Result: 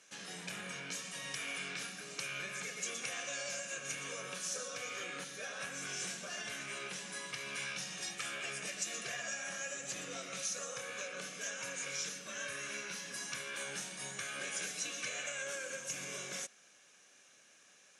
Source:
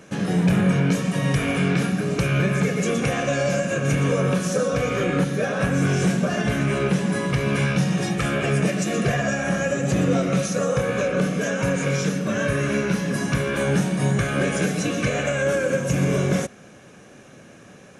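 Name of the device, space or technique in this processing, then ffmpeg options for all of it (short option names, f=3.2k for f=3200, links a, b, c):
piezo pickup straight into a mixer: -af "lowpass=6.9k,aderivative,volume=-2dB"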